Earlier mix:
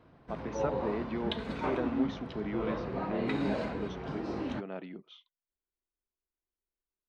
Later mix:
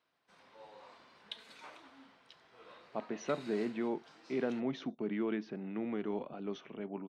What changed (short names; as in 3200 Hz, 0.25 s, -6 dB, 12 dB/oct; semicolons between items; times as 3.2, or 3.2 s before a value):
speech: entry +2.65 s; background: add differentiator